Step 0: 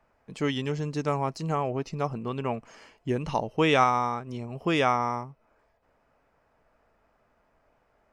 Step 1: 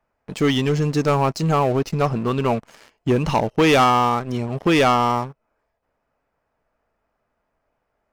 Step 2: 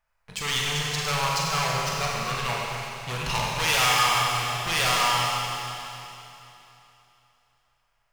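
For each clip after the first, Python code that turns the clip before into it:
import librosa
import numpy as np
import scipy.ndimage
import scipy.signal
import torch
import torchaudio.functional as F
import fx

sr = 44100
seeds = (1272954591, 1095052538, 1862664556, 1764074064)

y1 = fx.leveller(x, sr, passes=3)
y2 = np.clip(y1, -10.0 ** (-17.5 / 20.0), 10.0 ** (-17.5 / 20.0))
y2 = fx.tone_stack(y2, sr, knobs='10-0-10')
y2 = fx.rev_schroeder(y2, sr, rt60_s=3.1, comb_ms=32, drr_db=-3.5)
y2 = y2 * 10.0 ** (3.0 / 20.0)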